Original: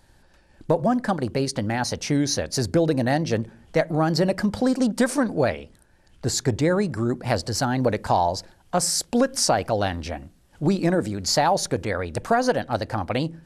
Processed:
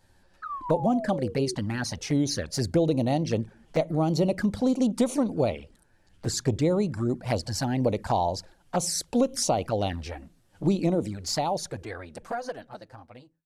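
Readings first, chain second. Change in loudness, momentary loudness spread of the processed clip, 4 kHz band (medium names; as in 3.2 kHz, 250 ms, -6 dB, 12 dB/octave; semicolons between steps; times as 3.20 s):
-4.0 dB, 13 LU, -6.0 dB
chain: fade out at the end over 2.78 s; painted sound fall, 0.42–1.55 s, 360–1300 Hz -30 dBFS; touch-sensitive flanger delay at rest 11.9 ms, full sweep at -18.5 dBFS; trim -2 dB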